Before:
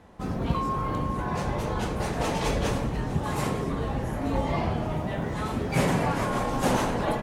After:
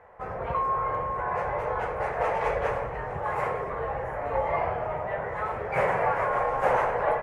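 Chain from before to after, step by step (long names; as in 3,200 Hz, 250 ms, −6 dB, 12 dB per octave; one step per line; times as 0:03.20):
drawn EQ curve 120 Hz 0 dB, 270 Hz −12 dB, 480 Hz +13 dB, 2,100 Hz +12 dB, 3,700 Hz −10 dB
level −9 dB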